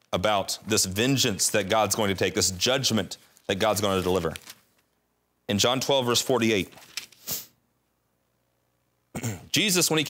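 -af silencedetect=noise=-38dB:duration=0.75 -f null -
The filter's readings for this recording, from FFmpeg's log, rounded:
silence_start: 4.52
silence_end: 5.49 | silence_duration: 0.97
silence_start: 7.44
silence_end: 9.15 | silence_duration: 1.71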